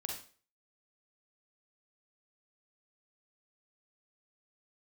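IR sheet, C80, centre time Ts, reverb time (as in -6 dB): 9.0 dB, 34 ms, 0.40 s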